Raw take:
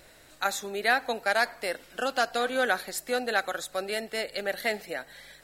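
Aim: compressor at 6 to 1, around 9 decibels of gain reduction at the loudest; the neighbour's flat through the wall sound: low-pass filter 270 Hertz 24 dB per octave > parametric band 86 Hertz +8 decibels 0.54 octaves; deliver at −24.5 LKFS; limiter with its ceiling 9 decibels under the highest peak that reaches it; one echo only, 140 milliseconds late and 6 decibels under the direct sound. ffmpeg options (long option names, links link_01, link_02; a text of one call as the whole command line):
ffmpeg -i in.wav -af "acompressor=threshold=-29dB:ratio=6,alimiter=level_in=3dB:limit=-24dB:level=0:latency=1,volume=-3dB,lowpass=frequency=270:width=0.5412,lowpass=frequency=270:width=1.3066,equalizer=frequency=86:width_type=o:width=0.54:gain=8,aecho=1:1:140:0.501,volume=26.5dB" out.wav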